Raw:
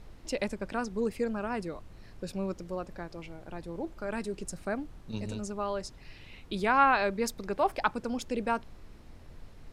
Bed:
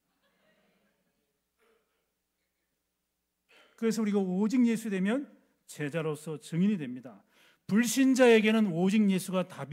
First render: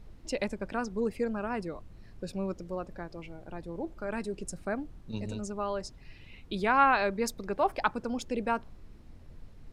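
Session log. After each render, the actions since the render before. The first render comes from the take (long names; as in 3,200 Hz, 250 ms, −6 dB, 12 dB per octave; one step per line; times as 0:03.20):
broadband denoise 6 dB, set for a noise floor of −51 dBFS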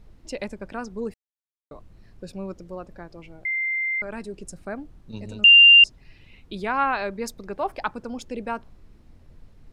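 0:01.14–0:01.71: silence
0:03.45–0:04.02: beep over 2,090 Hz −22.5 dBFS
0:05.44–0:05.84: beep over 2,790 Hz −7.5 dBFS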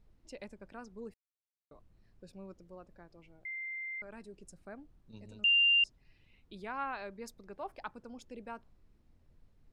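level −15 dB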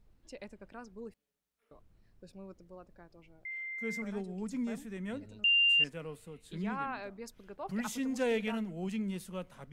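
mix in bed −10.5 dB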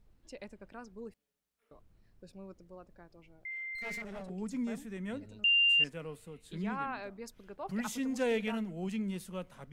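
0:03.75–0:04.30: lower of the sound and its delayed copy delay 1.5 ms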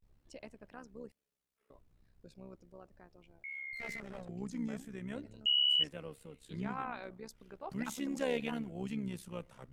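amplitude modulation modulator 67 Hz, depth 55%
pitch vibrato 0.39 Hz 94 cents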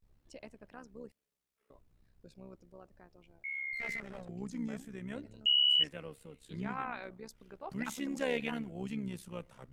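dynamic equaliser 2,000 Hz, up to +5 dB, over −51 dBFS, Q 1.4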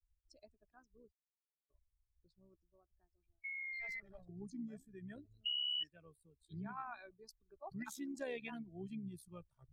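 spectral dynamics exaggerated over time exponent 2
downward compressor 2 to 1, threshold −45 dBFS, peak gain reduction 10.5 dB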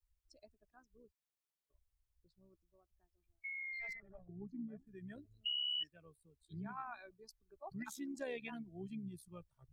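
0:03.93–0:04.87: low-pass filter 1,500 Hz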